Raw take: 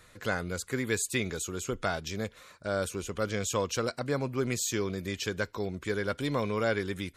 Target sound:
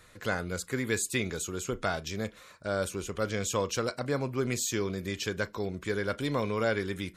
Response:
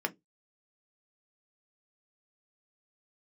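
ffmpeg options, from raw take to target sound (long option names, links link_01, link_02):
-filter_complex "[0:a]asplit=2[link_01][link_02];[1:a]atrim=start_sample=2205,adelay=33[link_03];[link_02][link_03]afir=irnorm=-1:irlink=0,volume=-21.5dB[link_04];[link_01][link_04]amix=inputs=2:normalize=0"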